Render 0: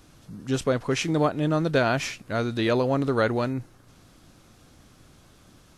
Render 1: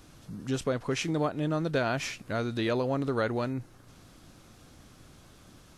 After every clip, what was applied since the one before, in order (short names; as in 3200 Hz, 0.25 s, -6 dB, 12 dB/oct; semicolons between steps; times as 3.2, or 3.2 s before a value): compressor 1.5:1, threshold -35 dBFS, peak gain reduction 6.5 dB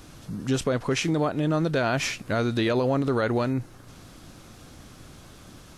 limiter -22.5 dBFS, peak gain reduction 5.5 dB; gain +7 dB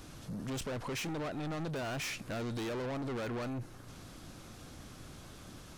soft clip -32.5 dBFS, distortion -5 dB; gain -3 dB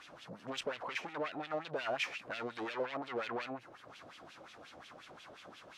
LFO band-pass sine 5.6 Hz 550–3100 Hz; gain +8.5 dB